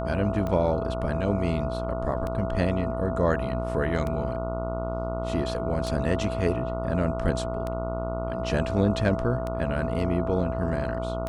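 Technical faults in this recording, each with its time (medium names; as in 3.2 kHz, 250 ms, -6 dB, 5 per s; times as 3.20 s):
buzz 60 Hz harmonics 24 -32 dBFS
tick 33 1/3 rpm -19 dBFS
whine 660 Hz -32 dBFS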